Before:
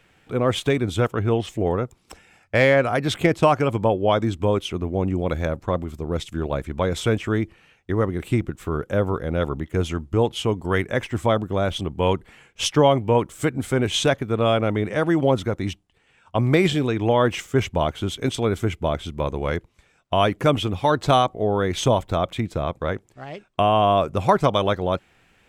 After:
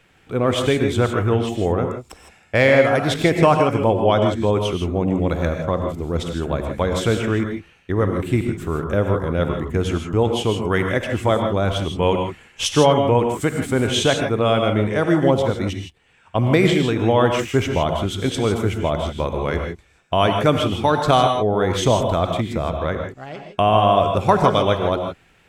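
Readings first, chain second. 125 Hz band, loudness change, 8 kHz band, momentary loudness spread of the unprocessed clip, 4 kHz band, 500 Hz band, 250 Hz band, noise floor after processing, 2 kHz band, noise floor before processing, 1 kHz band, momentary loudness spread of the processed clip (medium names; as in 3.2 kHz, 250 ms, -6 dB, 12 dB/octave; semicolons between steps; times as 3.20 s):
+2.5 dB, +3.0 dB, +3.0 dB, 9 LU, +3.0 dB, +3.0 dB, +3.0 dB, -55 dBFS, +3.0 dB, -61 dBFS, +3.0 dB, 9 LU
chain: vibrato 3.2 Hz 5.7 cents; gated-style reverb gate 180 ms rising, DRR 4 dB; trim +1.5 dB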